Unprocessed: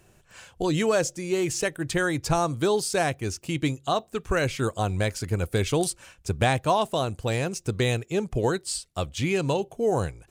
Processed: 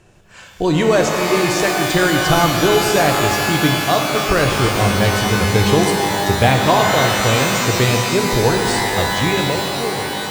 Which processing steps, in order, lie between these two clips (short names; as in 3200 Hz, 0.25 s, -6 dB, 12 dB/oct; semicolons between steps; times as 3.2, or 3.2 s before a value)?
ending faded out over 1.34 s; air absorption 55 m; shimmer reverb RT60 3.4 s, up +12 st, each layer -2 dB, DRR 2.5 dB; gain +7.5 dB